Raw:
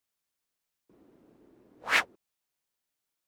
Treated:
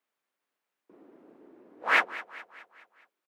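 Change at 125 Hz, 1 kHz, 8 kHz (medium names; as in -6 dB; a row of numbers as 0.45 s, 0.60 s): no reading, +5.0 dB, -8.5 dB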